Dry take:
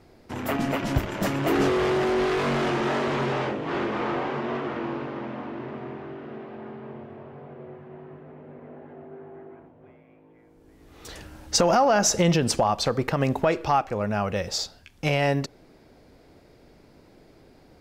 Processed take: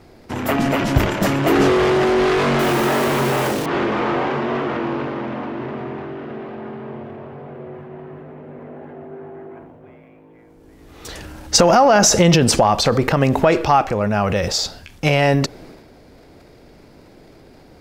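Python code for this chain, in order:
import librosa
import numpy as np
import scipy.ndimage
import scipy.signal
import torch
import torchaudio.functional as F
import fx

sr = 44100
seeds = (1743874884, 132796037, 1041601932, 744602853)

y = fx.block_float(x, sr, bits=3, at=(2.59, 3.68))
y = fx.transient(y, sr, attack_db=1, sustain_db=7)
y = F.gain(torch.from_numpy(y), 7.0).numpy()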